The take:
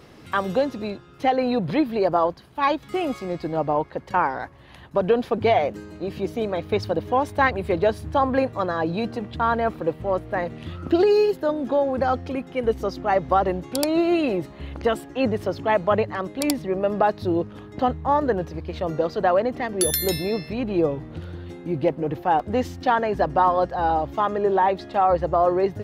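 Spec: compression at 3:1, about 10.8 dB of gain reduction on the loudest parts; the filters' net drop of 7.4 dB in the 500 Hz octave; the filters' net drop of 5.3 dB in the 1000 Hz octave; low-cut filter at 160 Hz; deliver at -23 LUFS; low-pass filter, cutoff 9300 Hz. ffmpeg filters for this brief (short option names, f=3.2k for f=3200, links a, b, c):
-af "highpass=160,lowpass=9.3k,equalizer=f=500:t=o:g=-8.5,equalizer=f=1k:t=o:g=-3.5,acompressor=threshold=-34dB:ratio=3,volume=13.5dB"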